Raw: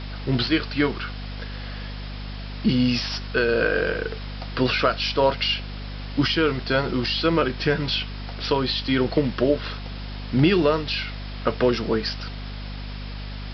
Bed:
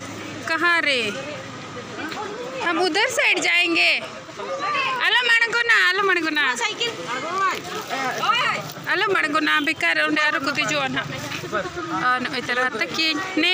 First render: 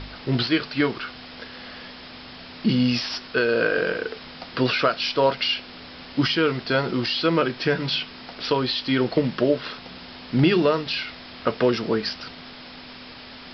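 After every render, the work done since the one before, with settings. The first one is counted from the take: de-hum 50 Hz, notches 4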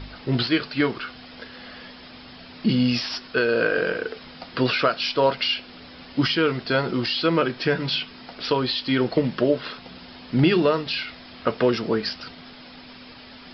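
noise reduction 6 dB, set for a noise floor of -42 dBFS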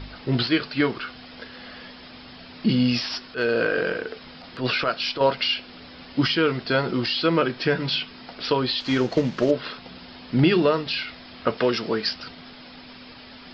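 3.25–5.21 s: transient shaper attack -12 dB, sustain -1 dB; 8.80–9.51 s: CVSD coder 32 kbps; 11.57–12.11 s: tilt EQ +1.5 dB/octave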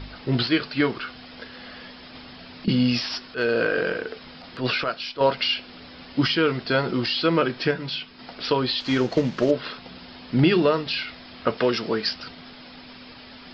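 2.15–2.68 s: three bands compressed up and down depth 100%; 4.70–5.18 s: fade out, to -9.5 dB; 7.71–8.19 s: gain -5 dB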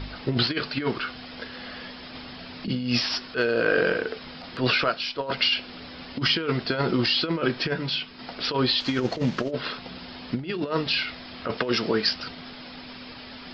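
compressor with a negative ratio -23 dBFS, ratio -0.5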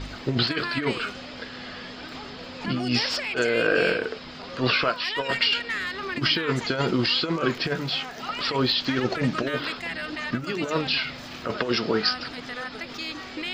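add bed -13.5 dB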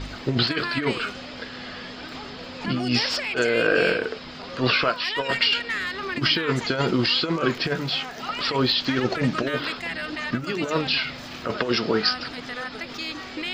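trim +1.5 dB

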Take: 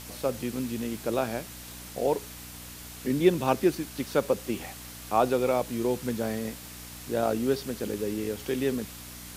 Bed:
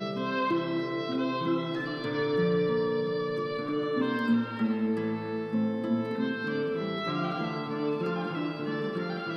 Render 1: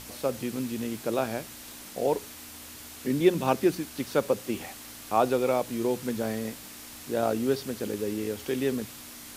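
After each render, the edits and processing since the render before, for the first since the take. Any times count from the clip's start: de-hum 60 Hz, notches 3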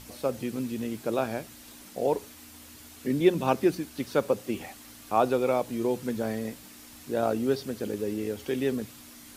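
noise reduction 6 dB, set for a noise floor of -45 dBFS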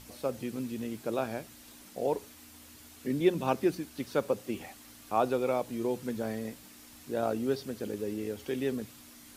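trim -4 dB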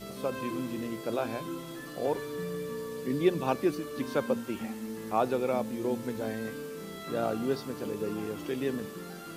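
add bed -10 dB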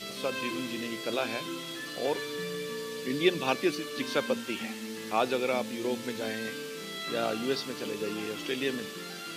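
frequency weighting D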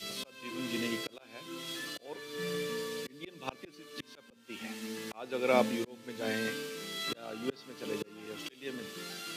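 slow attack 511 ms; three bands expanded up and down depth 70%

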